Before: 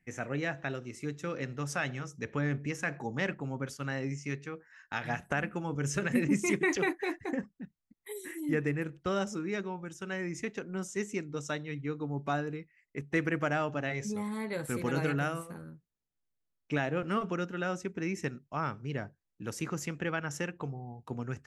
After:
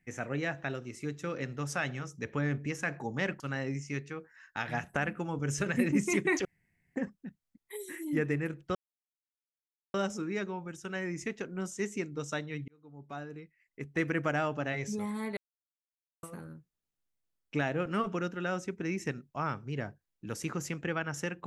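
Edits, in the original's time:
3.40–3.76 s: delete
6.81–7.32 s: room tone
9.11 s: insert silence 1.19 s
11.85–13.37 s: fade in
14.54–15.40 s: mute

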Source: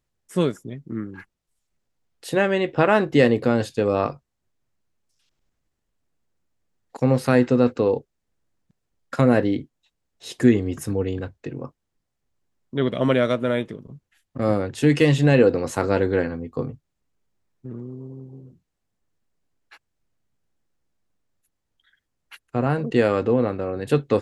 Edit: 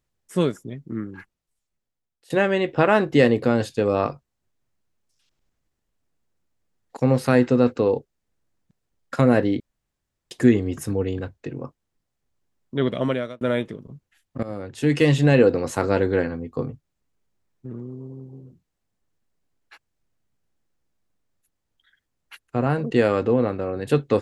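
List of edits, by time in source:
1.09–2.30 s: fade out, to -20 dB
9.60–10.31 s: room tone
12.91–13.41 s: fade out
14.43–15.09 s: fade in, from -17 dB

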